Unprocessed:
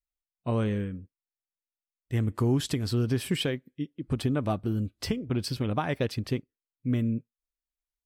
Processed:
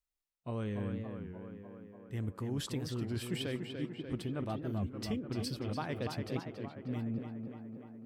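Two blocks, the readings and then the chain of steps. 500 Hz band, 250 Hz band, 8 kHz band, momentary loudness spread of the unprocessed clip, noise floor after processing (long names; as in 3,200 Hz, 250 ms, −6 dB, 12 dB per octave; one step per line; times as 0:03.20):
−8.0 dB, −8.0 dB, −7.5 dB, 8 LU, below −85 dBFS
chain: reversed playback
downward compressor, threshold −35 dBFS, peak gain reduction 13.5 dB
reversed playback
tape delay 292 ms, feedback 78%, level −4 dB, low-pass 2,800 Hz
wow of a warped record 33 1/3 rpm, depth 160 cents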